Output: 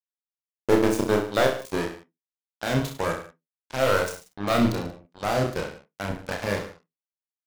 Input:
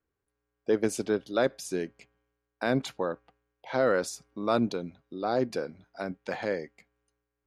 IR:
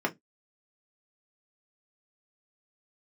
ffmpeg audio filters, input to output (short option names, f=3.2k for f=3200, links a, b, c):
-filter_complex "[0:a]asubboost=boost=8:cutoff=100,asplit=2[a][b];[b]alimiter=limit=-21.5dB:level=0:latency=1,volume=0dB[c];[a][c]amix=inputs=2:normalize=0,aeval=exprs='0.335*(cos(1*acos(clip(val(0)/0.335,-1,1)))-cos(1*PI/2))+0.15*(cos(2*acos(clip(val(0)/0.335,-1,1)))-cos(2*PI/2))+0.0119*(cos(5*acos(clip(val(0)/0.335,-1,1)))-cos(5*PI/2))+0.0376*(cos(7*acos(clip(val(0)/0.335,-1,1)))-cos(7*PI/2))+0.0075*(cos(8*acos(clip(val(0)/0.335,-1,1)))-cos(8*PI/2))':c=same,acrusher=bits=4:mix=0:aa=0.5,aecho=1:1:30|63|99.3|139.2|183.2:0.631|0.398|0.251|0.158|0.1,asplit=2[d][e];[1:a]atrim=start_sample=2205,adelay=27[f];[e][f]afir=irnorm=-1:irlink=0,volume=-22dB[g];[d][g]amix=inputs=2:normalize=0"